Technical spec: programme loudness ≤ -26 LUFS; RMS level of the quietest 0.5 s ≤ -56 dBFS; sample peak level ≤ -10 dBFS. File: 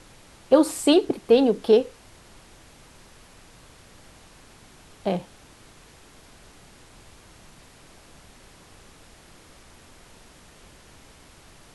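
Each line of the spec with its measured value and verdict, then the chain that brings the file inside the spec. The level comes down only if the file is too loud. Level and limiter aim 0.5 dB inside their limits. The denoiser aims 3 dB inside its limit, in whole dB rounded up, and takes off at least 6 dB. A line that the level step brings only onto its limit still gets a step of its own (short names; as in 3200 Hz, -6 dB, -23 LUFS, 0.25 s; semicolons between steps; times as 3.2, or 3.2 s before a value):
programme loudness -21.0 LUFS: fail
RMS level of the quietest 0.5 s -51 dBFS: fail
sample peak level -5.0 dBFS: fail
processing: gain -5.5 dB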